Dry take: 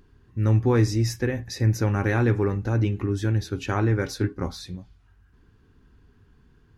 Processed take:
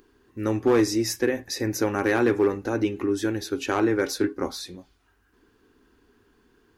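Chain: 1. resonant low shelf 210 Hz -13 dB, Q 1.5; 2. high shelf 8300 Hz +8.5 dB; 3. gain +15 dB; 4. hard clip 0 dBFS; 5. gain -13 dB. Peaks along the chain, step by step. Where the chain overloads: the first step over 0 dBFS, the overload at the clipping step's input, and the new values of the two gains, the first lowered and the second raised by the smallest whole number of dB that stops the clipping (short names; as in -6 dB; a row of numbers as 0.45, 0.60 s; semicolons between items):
-10.0, -10.0, +5.0, 0.0, -13.0 dBFS; step 3, 5.0 dB; step 3 +10 dB, step 5 -8 dB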